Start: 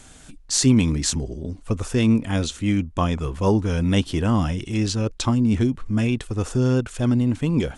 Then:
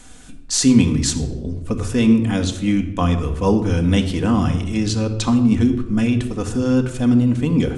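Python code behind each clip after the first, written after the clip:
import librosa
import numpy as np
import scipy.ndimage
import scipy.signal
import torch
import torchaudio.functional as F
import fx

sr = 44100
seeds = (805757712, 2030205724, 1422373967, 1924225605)

y = fx.room_shoebox(x, sr, seeds[0], volume_m3=3700.0, walls='furnished', distance_m=1.9)
y = y * librosa.db_to_amplitude(1.0)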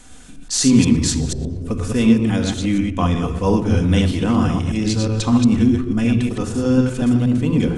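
y = fx.reverse_delay(x, sr, ms=121, wet_db=-3.5)
y = y * librosa.db_to_amplitude(-1.0)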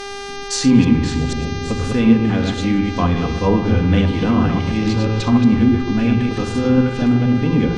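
y = fx.dmg_buzz(x, sr, base_hz=400.0, harmonics=16, level_db=-31.0, tilt_db=-4, odd_only=False)
y = fx.echo_feedback(y, sr, ms=598, feedback_pct=55, wet_db=-18)
y = fx.env_lowpass_down(y, sr, base_hz=2900.0, full_db=-13.0)
y = y * librosa.db_to_amplitude(1.0)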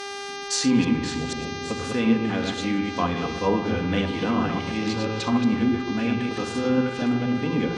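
y = fx.highpass(x, sr, hz=350.0, slope=6)
y = y * librosa.db_to_amplitude(-3.0)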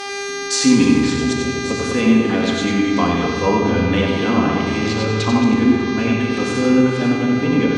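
y = x + 10.0 ** (-6.0 / 20.0) * np.pad(x, (int(93 * sr / 1000.0), 0))[:len(x)]
y = fx.rev_fdn(y, sr, rt60_s=2.6, lf_ratio=1.25, hf_ratio=0.75, size_ms=22.0, drr_db=5.0)
y = y * librosa.db_to_amplitude(5.0)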